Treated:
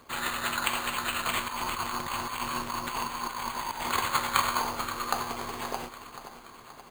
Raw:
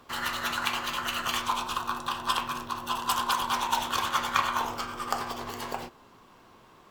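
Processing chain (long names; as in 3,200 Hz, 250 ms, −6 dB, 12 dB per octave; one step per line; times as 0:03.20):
0:01.48–0:03.92: compressor whose output falls as the input rises −34 dBFS, ratio −1
repeating echo 526 ms, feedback 58%, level −13 dB
bad sample-rate conversion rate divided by 8×, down none, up hold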